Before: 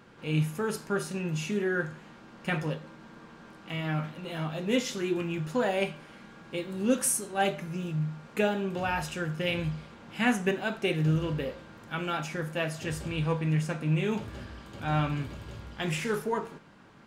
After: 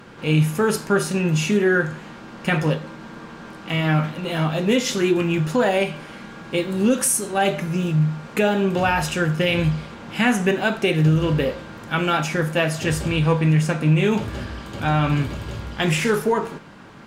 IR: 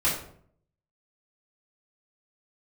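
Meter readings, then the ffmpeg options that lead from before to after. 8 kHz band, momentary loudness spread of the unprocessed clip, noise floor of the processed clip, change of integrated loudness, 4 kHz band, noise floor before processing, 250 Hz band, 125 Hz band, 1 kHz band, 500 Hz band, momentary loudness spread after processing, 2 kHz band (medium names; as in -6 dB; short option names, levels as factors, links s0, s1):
+8.5 dB, 16 LU, -40 dBFS, +10.0 dB, +10.0 dB, -51 dBFS, +10.0 dB, +10.5 dB, +9.5 dB, +9.5 dB, 14 LU, +9.5 dB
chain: -af "acontrast=69,alimiter=limit=0.188:level=0:latency=1:release=128,volume=1.78" -ar 48000 -c:a sbc -b:a 192k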